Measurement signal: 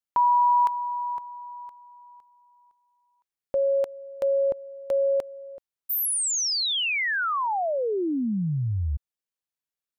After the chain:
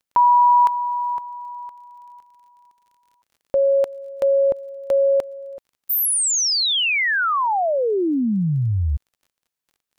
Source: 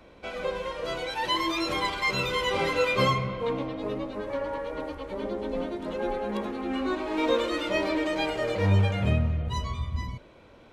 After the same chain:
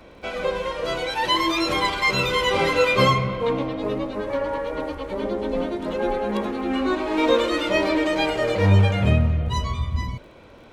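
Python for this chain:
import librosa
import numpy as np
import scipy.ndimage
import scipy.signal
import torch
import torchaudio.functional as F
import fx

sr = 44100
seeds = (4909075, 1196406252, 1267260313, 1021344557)

y = fx.dmg_crackle(x, sr, seeds[0], per_s=39.0, level_db=-53.0)
y = y * librosa.db_to_amplitude(6.0)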